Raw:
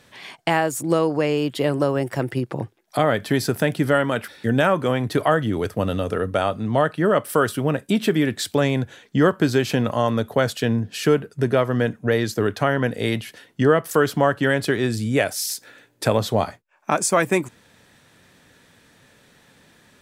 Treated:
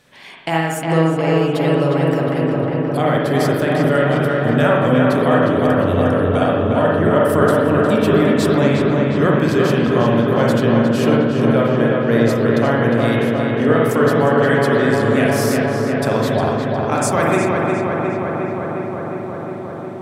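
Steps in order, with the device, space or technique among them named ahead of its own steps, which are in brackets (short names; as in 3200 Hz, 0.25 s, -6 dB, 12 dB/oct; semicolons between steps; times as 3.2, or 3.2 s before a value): dub delay into a spring reverb (darkening echo 0.358 s, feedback 83%, low-pass 3000 Hz, level -3 dB; spring tank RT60 1 s, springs 43/55 ms, chirp 80 ms, DRR -1.5 dB); gain -2 dB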